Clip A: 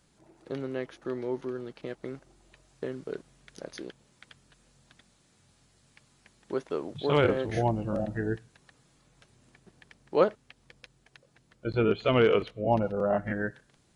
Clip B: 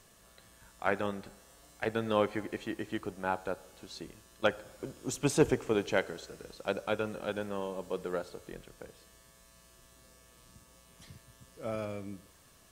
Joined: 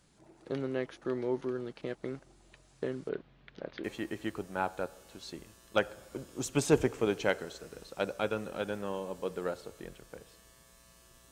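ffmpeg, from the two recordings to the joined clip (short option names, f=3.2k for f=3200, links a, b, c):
-filter_complex "[0:a]asettb=1/sr,asplit=3[a][b][c];[a]atrim=end=3.094[d];[b]atrim=start=3.09:end=3.84,asetpts=PTS-STARTPTS,afade=t=in:d=0.004:c=qsin,afade=t=out:st=0.746:d=0.004:c=qsin,lowpass=f=3.6k:w=0.5412,lowpass=f=3.6k:w=1.3066[e];[c]atrim=start=3.836[f];[d][e]acrossfade=d=0.004:c1=hsin:c2=qsin[g];[g][f]acrossfade=d=0.004:c1=qsin:c2=hsin,apad=whole_dur=11.31,atrim=end=11.31,atrim=end=3.842[h];[1:a]atrim=start=2.518:end=9.99[i];[h][i]acrossfade=d=0.004:c1=hsin:c2=hsin"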